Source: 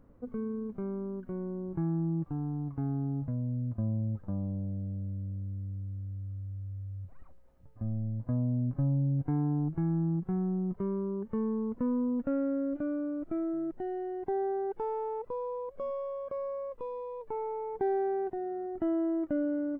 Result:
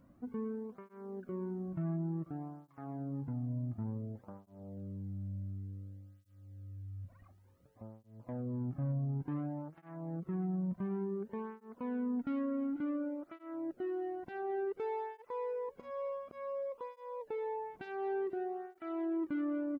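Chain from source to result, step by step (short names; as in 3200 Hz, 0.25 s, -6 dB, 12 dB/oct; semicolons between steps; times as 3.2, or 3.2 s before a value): high shelf 2000 Hz +7.5 dB; soft clip -30 dBFS, distortion -13 dB; echo 0.491 s -18.5 dB; tape flanging out of phase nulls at 0.56 Hz, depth 2.5 ms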